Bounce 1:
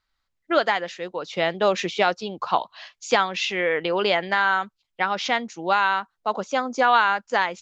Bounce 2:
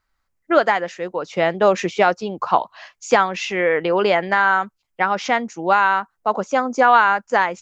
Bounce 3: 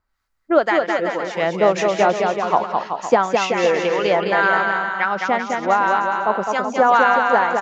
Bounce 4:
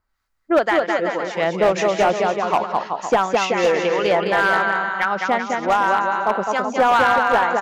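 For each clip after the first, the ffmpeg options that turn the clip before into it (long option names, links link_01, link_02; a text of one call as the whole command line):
ffmpeg -i in.wav -af "equalizer=frequency=3700:width=1.3:gain=-10.5,volume=5.5dB" out.wav
ffmpeg -i in.wav -filter_complex "[0:a]acrossover=split=1100[link_01][link_02];[link_01]aeval=exprs='val(0)*(1-0.7/2+0.7/2*cos(2*PI*1.9*n/s))':channel_layout=same[link_03];[link_02]aeval=exprs='val(0)*(1-0.7/2-0.7/2*cos(2*PI*1.9*n/s))':channel_layout=same[link_04];[link_03][link_04]amix=inputs=2:normalize=0,asplit=2[link_05][link_06];[link_06]aecho=0:1:210|378|512.4|619.9|705.9:0.631|0.398|0.251|0.158|0.1[link_07];[link_05][link_07]amix=inputs=2:normalize=0,volume=1.5dB" out.wav
ffmpeg -i in.wav -af "asoftclip=type=hard:threshold=-10dB" out.wav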